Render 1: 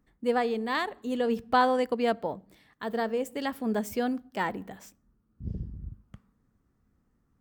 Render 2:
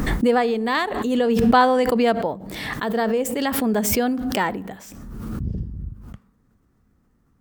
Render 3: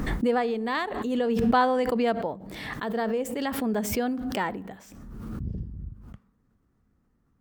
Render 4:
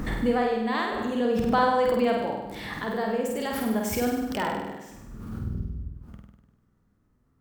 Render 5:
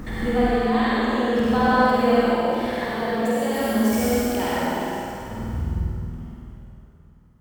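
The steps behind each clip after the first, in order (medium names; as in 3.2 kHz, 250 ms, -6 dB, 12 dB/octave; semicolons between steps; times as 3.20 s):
swell ahead of each attack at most 30 dB/s; trim +7 dB
treble shelf 5 kHz -5.5 dB; trim -6 dB
flutter echo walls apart 8.5 m, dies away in 0.95 s; trim -2 dB
reverberation RT60 3.0 s, pre-delay 57 ms, DRR -7.5 dB; trim -3 dB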